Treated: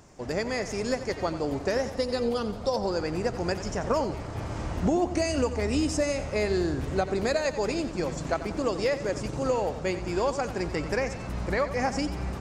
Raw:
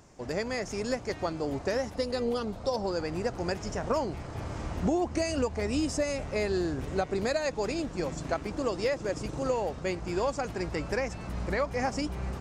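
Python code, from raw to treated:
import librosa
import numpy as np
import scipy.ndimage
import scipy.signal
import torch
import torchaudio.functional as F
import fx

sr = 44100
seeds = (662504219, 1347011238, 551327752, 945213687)

y = fx.echo_feedback(x, sr, ms=90, feedback_pct=45, wet_db=-12.5)
y = y * 10.0 ** (2.5 / 20.0)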